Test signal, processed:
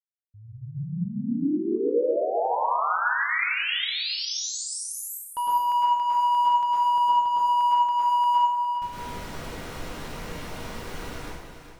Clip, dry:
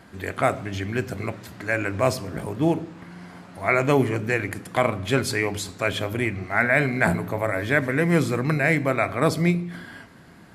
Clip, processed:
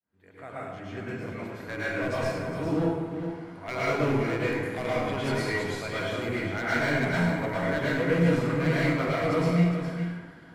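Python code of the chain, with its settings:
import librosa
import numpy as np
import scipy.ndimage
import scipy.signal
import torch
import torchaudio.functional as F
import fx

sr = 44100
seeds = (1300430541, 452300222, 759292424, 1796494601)

p1 = fx.fade_in_head(x, sr, length_s=1.53)
p2 = fx.high_shelf(p1, sr, hz=5700.0, db=-11.5)
p3 = np.clip(10.0 ** (17.0 / 20.0) * p2, -1.0, 1.0) / 10.0 ** (17.0 / 20.0)
p4 = fx.comb_fb(p3, sr, f0_hz=480.0, decay_s=0.15, harmonics='all', damping=0.0, mix_pct=60)
p5 = p4 + fx.echo_single(p4, sr, ms=408, db=-9.0, dry=0)
p6 = fx.rev_plate(p5, sr, seeds[0], rt60_s=1.1, hf_ratio=0.7, predelay_ms=95, drr_db=-8.0)
p7 = fx.end_taper(p6, sr, db_per_s=490.0)
y = p7 * 10.0 ** (-5.0 / 20.0)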